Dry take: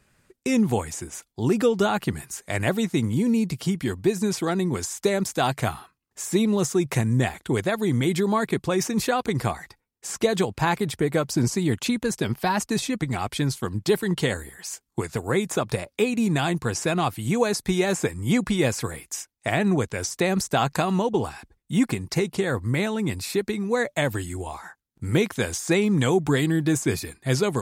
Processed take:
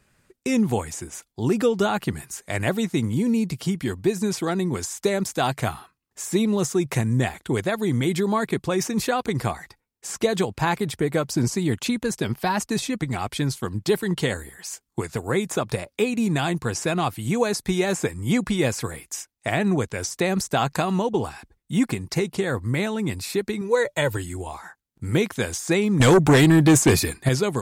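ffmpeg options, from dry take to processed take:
ffmpeg -i in.wav -filter_complex "[0:a]asettb=1/sr,asplit=3[link_01][link_02][link_03];[link_01]atrim=end=23.614[link_04];[link_02]atrim=start=23.61:end=24.17,asetpts=PTS-STARTPTS,afade=type=in:duration=0.004:curve=qsin,afade=type=out:start_time=0.556:duration=0.004:curve=qsin,aecho=1:1:2.1:0.65,atrim=end_sample=24696[link_05];[link_03]atrim=start=24.166[link_06];[link_04][link_05]acrossfade=duration=0.004:curve1=hsin:curve2=qsin[link_07];[link_07][link_06]acrossfade=duration=0.004:curve1=qsin:curve2=hsin,asettb=1/sr,asplit=3[link_08][link_09][link_10];[link_08]atrim=end=26.004[link_11];[link_09]atrim=start=26:end=27.29,asetpts=PTS-STARTPTS,afade=type=in:duration=0.004:curve=qsin,afade=type=out:start_time=1.286:duration=0.004:curve=qsin,aeval=exprs='0.316*sin(PI/2*2*val(0)/0.316)':channel_layout=same[link_12];[link_10]atrim=start=27.286[link_13];[link_11][link_12]acrossfade=duration=0.004:curve1=hsin:curve2=qsin[link_14];[link_14][link_13]acrossfade=duration=0.004:curve1=qsin:curve2=hsin" out.wav

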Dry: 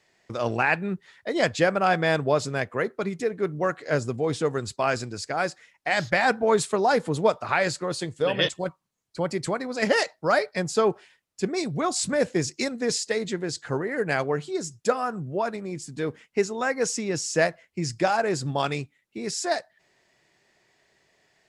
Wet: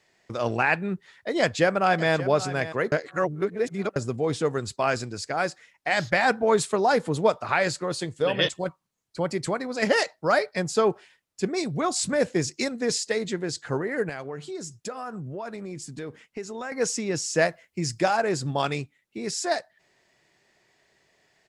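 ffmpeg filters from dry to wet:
ffmpeg -i in.wav -filter_complex "[0:a]asplit=2[link_01][link_02];[link_02]afade=type=in:start_time=1.4:duration=0.01,afade=type=out:start_time=2.14:duration=0.01,aecho=0:1:580|1160:0.199526|0.0299289[link_03];[link_01][link_03]amix=inputs=2:normalize=0,asettb=1/sr,asplit=3[link_04][link_05][link_06];[link_04]atrim=end=14.094[link_07];[link_05]atrim=start=14.09:end=16.72,asetpts=PTS-STARTPTS,afade=type=in:duration=0.004:curve=qsin,afade=type=out:start_time=2.626:duration=0.004:curve=qsin,acompressor=threshold=-32dB:ratio=4:attack=3.2:release=140:knee=1:detection=peak[link_08];[link_06]atrim=start=16.716[link_09];[link_07][link_08]acrossfade=duration=0.004:curve1=hsin:curve2=qsin[link_10];[link_10][link_09]acrossfade=duration=0.004:curve1=qsin:curve2=hsin,asettb=1/sr,asplit=3[link_11][link_12][link_13];[link_11]atrim=end=17.494[link_14];[link_12]atrim=start=17.49:end=18.09,asetpts=PTS-STARTPTS,afade=type=in:duration=0.004:curve=qsin,afade=type=out:start_time=0.596:duration=0.004:curve=qsin,highshelf=frequency=8400:gain=7[link_15];[link_13]atrim=start=18.086[link_16];[link_14][link_15]acrossfade=duration=0.004:curve1=hsin:curve2=qsin[link_17];[link_17][link_16]acrossfade=duration=0.004:curve1=qsin:curve2=hsin,asplit=3[link_18][link_19][link_20];[link_18]atrim=end=2.922[link_21];[link_19]atrim=start=2.918:end=3.962,asetpts=PTS-STARTPTS,areverse[link_22];[link_20]atrim=start=3.958[link_23];[link_21][link_22]acrossfade=duration=0.004:curve1=hsin:curve2=hsin[link_24];[link_24][link_23]acrossfade=duration=0.004:curve1=hsin:curve2=hsin" out.wav

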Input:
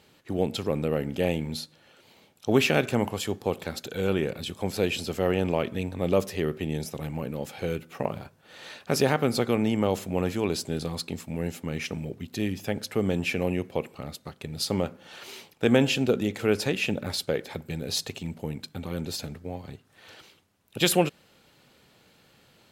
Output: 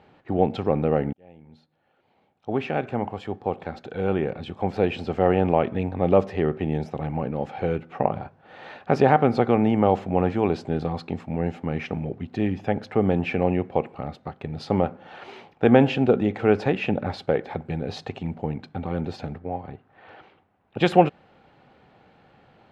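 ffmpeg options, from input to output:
ffmpeg -i in.wav -filter_complex "[0:a]asettb=1/sr,asplit=3[link_01][link_02][link_03];[link_01]atrim=end=19.384[link_04];[link_02]atrim=start=19.38:end=20.77,asetpts=PTS-STARTPTS,afade=type=in:duration=0.004:curve=qsin,afade=type=out:start_time=1.386:duration=0.004:curve=qsin,bass=frequency=250:gain=-3,treble=frequency=4000:gain=-10[link_05];[link_03]atrim=start=20.766[link_06];[link_04][link_05]acrossfade=duration=0.004:curve1=hsin:curve2=qsin[link_07];[link_07][link_06]acrossfade=duration=0.004:curve1=qsin:curve2=hsin,asplit=2[link_08][link_09];[link_08]atrim=end=1.13,asetpts=PTS-STARTPTS,afade=type=out:start_time=1.126:duration=0.004:curve=hsin[link_10];[link_09]atrim=start=1.13,asetpts=PTS-STARTPTS,afade=type=in:duration=4.15[link_11];[link_10][link_11]concat=n=2:v=0:a=1,lowpass=1900,equalizer=frequency=770:width=4.8:gain=9,volume=4.5dB" out.wav

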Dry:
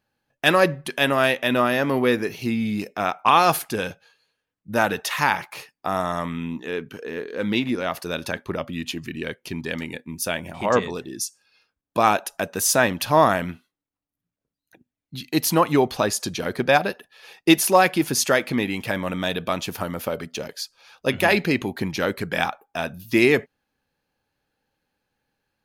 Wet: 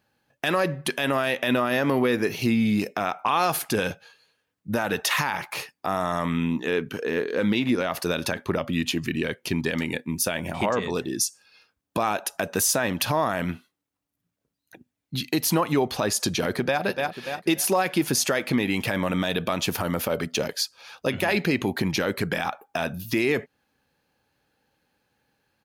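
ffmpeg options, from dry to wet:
ffmpeg -i in.wav -filter_complex "[0:a]asplit=2[link_01][link_02];[link_02]afade=type=in:start_time=16.39:duration=0.01,afade=type=out:start_time=16.83:duration=0.01,aecho=0:1:290|580|870|1160|1450:0.188365|0.0941825|0.0470912|0.0235456|0.0117728[link_03];[link_01][link_03]amix=inputs=2:normalize=0,acompressor=threshold=-25dB:ratio=2.5,highpass=53,alimiter=limit=-18dB:level=0:latency=1:release=38,volume=5.5dB" out.wav

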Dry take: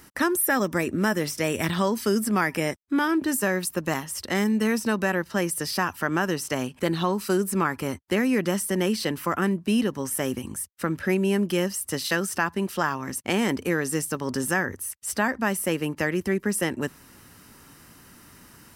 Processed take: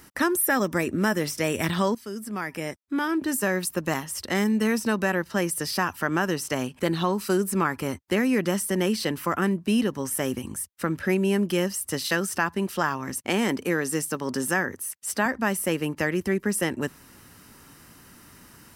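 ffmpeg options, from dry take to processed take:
ffmpeg -i in.wav -filter_complex "[0:a]asettb=1/sr,asplit=3[link_01][link_02][link_03];[link_01]atrim=end=13.264[link_04];[link_02]atrim=start=13.26:end=15.26,asetpts=PTS-STARTPTS,afade=type=in:duration=0.004:curve=qsin,afade=type=out:start_time=1.996:duration=0.004:curve=qsin,highpass=140[link_05];[link_03]atrim=start=15.256[link_06];[link_04][link_05]acrossfade=duration=0.004:curve1=hsin:curve2=qsin[link_07];[link_07][link_06]acrossfade=duration=0.004:curve1=qsin:curve2=hsin,asplit=2[link_08][link_09];[link_08]atrim=end=1.95,asetpts=PTS-STARTPTS,afade=type=out:start_time=1.946:duration=0.004:curve=hsin:silence=0.16788[link_10];[link_09]atrim=start=1.95,asetpts=PTS-STARTPTS,afade=type=in:duration=1.64:silence=0.16788[link_11];[link_10][link_11]concat=n=2:v=0:a=1" out.wav

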